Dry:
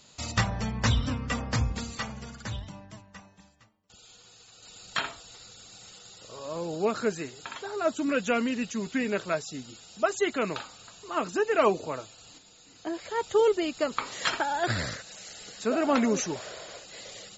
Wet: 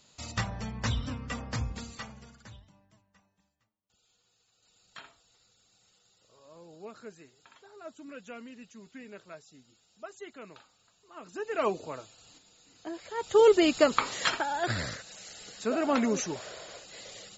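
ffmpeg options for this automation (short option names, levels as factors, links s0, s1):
-af "volume=8.91,afade=t=out:st=1.84:d=0.82:silence=0.251189,afade=t=in:st=11.19:d=0.48:silence=0.237137,afade=t=in:st=13.17:d=0.53:silence=0.237137,afade=t=out:st=13.7:d=0.69:silence=0.334965"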